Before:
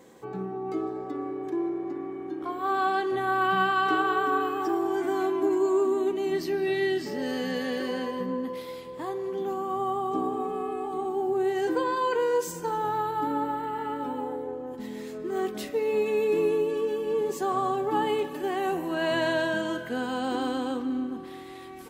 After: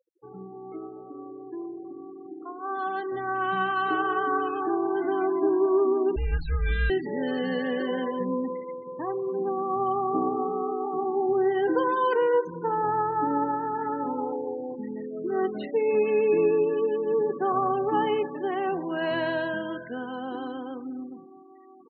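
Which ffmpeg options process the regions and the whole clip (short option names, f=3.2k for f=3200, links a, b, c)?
-filter_complex "[0:a]asettb=1/sr,asplit=3[a][b][c];[a]atrim=end=6.164[d];[b]atrim=start=6.16:end=6.9,asetpts=PTS-STARTPTS,afade=t=in:d=0.004:c=qsin,afade=t=out:st=0.736:d=0.004:c=qsin,afreqshift=-330,acrusher=bits=9:dc=4:mix=0:aa=0.000001[e];[c]atrim=start=6.896[f];[d][e]acrossfade=d=0.004:c1=hsin:c2=qsin[g];[g][f]acrossfade=d=0.004:c1=qsin:c2=hsin,lowpass=3.5k,afftfilt=real='re*gte(hypot(re,im),0.0178)':imag='im*gte(hypot(re,im),0.0178)':win_size=1024:overlap=0.75,dynaudnorm=f=590:g=13:m=11.5dB,volume=-8dB"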